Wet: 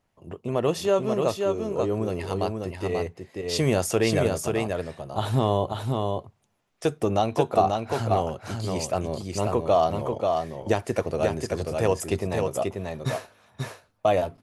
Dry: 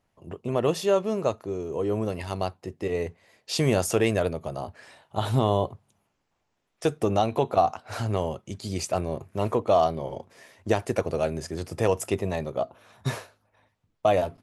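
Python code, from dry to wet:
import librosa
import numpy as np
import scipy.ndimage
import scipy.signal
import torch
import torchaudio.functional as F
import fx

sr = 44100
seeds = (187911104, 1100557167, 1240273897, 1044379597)

y = x + 10.0 ** (-4.0 / 20.0) * np.pad(x, (int(537 * sr / 1000.0), 0))[:len(x)]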